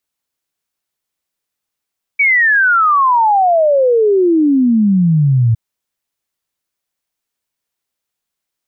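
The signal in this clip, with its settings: log sweep 2300 Hz -> 110 Hz 3.36 s -8 dBFS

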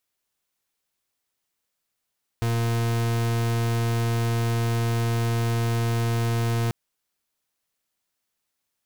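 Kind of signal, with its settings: pulse 116 Hz, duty 41% -23.5 dBFS 4.29 s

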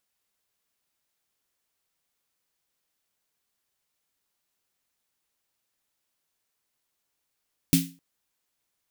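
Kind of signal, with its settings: snare drum length 0.26 s, tones 170 Hz, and 270 Hz, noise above 2200 Hz, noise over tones -4.5 dB, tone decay 0.33 s, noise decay 0.30 s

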